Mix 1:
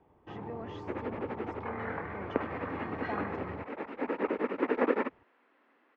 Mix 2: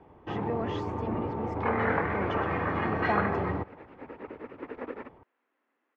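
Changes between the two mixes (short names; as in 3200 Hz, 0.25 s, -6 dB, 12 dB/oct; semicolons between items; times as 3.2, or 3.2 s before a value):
speech +9.5 dB; first sound +10.0 dB; second sound -11.0 dB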